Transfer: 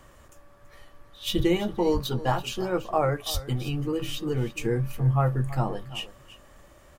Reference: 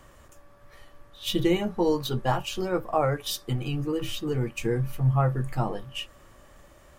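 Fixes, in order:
0:01.36–0:01.48: high-pass filter 140 Hz 24 dB per octave
0:01.93–0:02.05: high-pass filter 140 Hz 24 dB per octave
0:03.33–0:03.45: high-pass filter 140 Hz 24 dB per octave
echo removal 331 ms −16 dB

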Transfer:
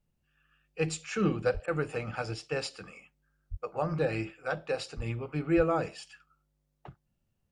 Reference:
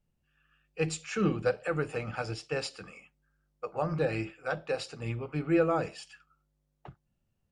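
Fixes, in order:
high-pass at the plosives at 0:01.53/0:03.50/0:04.96/0:05.56
repair the gap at 0:01.66, 17 ms

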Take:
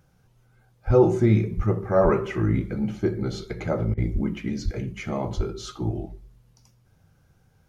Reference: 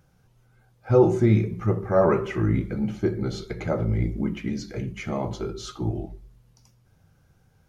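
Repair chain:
high-pass at the plosives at 0:00.86/0:01.56/0:02.03/0:04.13/0:04.64/0:05.36
repair the gap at 0:03.94, 34 ms

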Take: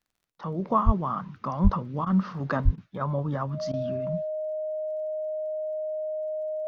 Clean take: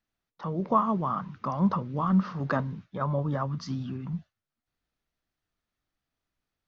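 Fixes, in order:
click removal
notch filter 620 Hz, Q 30
high-pass at the plosives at 0:00.85/0:01.63/0:02.64
repair the gap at 0:02.05/0:02.76/0:03.72, 14 ms

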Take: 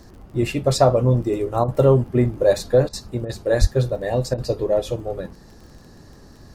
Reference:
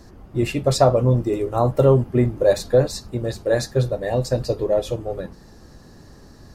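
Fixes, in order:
click removal
0:03.60–0:03.72: high-pass filter 140 Hz 24 dB per octave
repair the gap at 0:01.64/0:02.89/0:03.25/0:04.34, 41 ms

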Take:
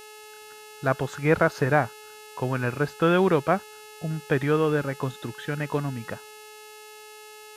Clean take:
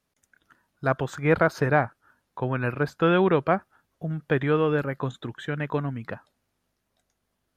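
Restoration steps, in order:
hum removal 426.7 Hz, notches 26
notch filter 2,700 Hz, Q 30
downward expander −38 dBFS, range −21 dB

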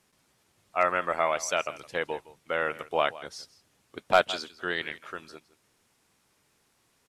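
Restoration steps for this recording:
clipped peaks rebuilt −10 dBFS
echo removal 164 ms −18.5 dB

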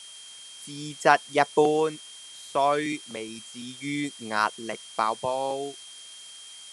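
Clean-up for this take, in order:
notch filter 3,200 Hz, Q 30
noise reduction from a noise print 26 dB

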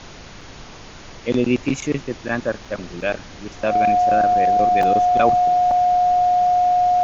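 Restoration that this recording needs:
notch filter 720 Hz, Q 30
repair the gap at 0:00.41/0:02.65/0:03.01/0:04.83/0:05.71, 3.5 ms
noise reduction from a noise print 26 dB

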